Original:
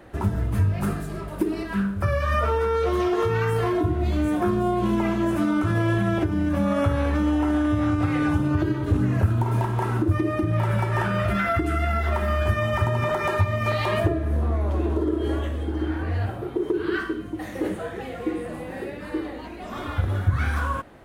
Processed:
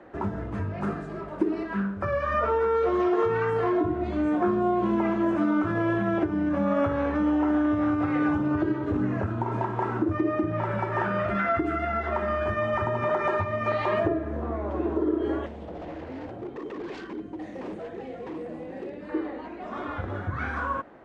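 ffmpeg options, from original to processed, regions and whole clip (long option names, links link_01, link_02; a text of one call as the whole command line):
ffmpeg -i in.wav -filter_complex "[0:a]asettb=1/sr,asplit=3[link_01][link_02][link_03];[link_01]atrim=end=15.464[link_04];[link_02]atrim=start=15.46:end=19.09,asetpts=PTS-STARTPTS,afade=type=in:duration=0.004:curve=qsin,afade=type=out:start_time=3.626:duration=0.004:curve=qsin,aeval=exprs='0.0447*(abs(mod(val(0)/0.0447+3,4)-2)-1)':channel_layout=same,equalizer=frequency=1300:width=0.98:gain=-11[link_05];[link_03]atrim=start=19.086[link_06];[link_04][link_05]acrossfade=duration=0.004:curve1=hsin:curve2=qsin[link_07];[link_07][link_06]acrossfade=duration=0.004:curve1=qsin:curve2=hsin,lowpass=frequency=7200:width=0.5412,lowpass=frequency=7200:width=1.3066,acrossover=split=190 2100:gain=0.224 1 0.224[link_08][link_09][link_10];[link_08][link_09][link_10]amix=inputs=3:normalize=0" out.wav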